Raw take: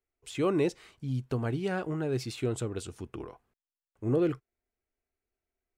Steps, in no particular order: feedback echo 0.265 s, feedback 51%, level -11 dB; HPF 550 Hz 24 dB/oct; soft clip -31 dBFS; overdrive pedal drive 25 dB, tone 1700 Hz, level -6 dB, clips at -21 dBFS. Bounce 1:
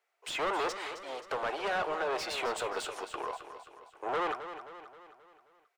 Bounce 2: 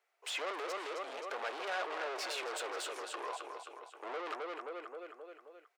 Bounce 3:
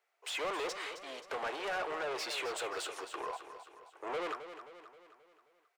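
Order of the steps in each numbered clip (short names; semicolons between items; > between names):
soft clip > HPF > overdrive pedal > feedback echo; feedback echo > overdrive pedal > soft clip > HPF; overdrive pedal > HPF > soft clip > feedback echo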